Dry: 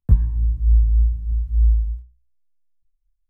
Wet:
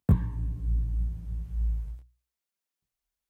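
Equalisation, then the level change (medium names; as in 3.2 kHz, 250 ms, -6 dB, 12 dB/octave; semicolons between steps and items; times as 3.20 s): high-pass 170 Hz 12 dB/octave; +6.5 dB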